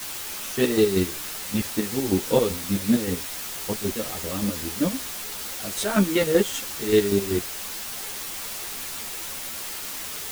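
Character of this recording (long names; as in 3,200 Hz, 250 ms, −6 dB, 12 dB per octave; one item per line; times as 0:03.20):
chopped level 5.2 Hz, depth 65%, duty 35%
a quantiser's noise floor 6 bits, dither triangular
a shimmering, thickened sound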